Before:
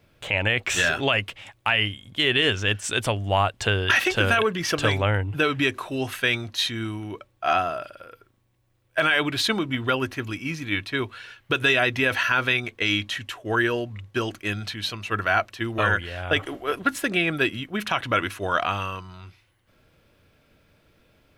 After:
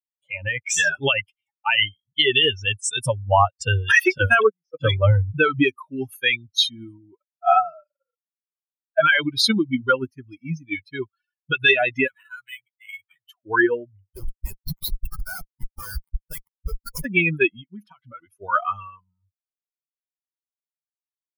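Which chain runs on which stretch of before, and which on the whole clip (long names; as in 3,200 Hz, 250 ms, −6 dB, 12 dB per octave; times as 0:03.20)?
0:04.18–0:04.81: noise gate −23 dBFS, range −19 dB + multiband upward and downward expander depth 40%
0:12.07–0:13.26: guitar amp tone stack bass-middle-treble 10-0-10 + linearly interpolated sample-rate reduction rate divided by 8×
0:14.15–0:17.05: one scale factor per block 5 bits + tilt shelving filter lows −8 dB, about 1,300 Hz + comparator with hysteresis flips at −22 dBFS
0:17.74–0:18.41: high-shelf EQ 4,700 Hz −5 dB + downward compressor 2 to 1, threshold −32 dBFS
whole clip: spectral dynamics exaggerated over time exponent 3; automatic gain control gain up to 11 dB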